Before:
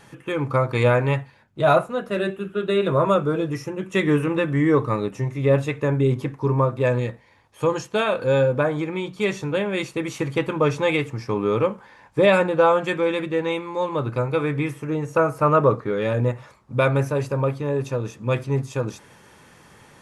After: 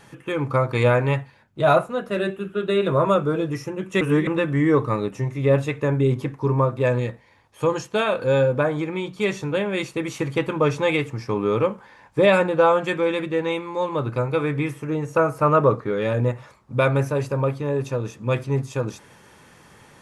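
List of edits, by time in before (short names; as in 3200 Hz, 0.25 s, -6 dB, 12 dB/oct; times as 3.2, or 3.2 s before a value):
4.01–4.27 reverse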